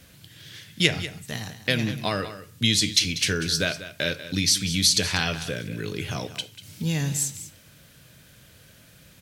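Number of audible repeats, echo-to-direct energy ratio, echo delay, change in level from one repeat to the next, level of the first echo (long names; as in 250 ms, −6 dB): 1, −13.5 dB, 192 ms, repeats not evenly spaced, −13.5 dB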